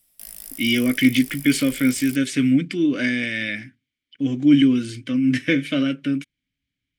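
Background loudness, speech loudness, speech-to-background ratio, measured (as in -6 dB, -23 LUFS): -36.5 LUFS, -20.5 LUFS, 16.0 dB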